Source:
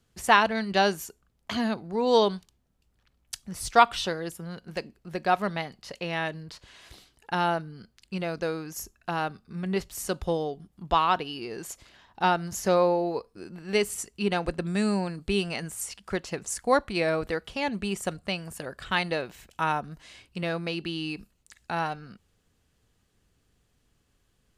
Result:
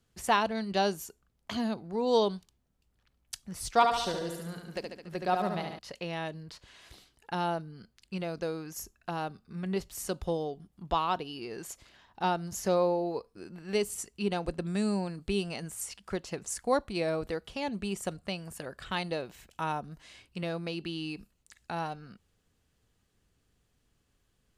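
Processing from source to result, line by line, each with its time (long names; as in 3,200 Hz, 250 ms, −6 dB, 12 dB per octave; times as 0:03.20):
0:03.73–0:05.79: repeating echo 71 ms, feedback 57%, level −5 dB
whole clip: dynamic equaliser 1,800 Hz, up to −7 dB, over −41 dBFS, Q 0.99; level −3.5 dB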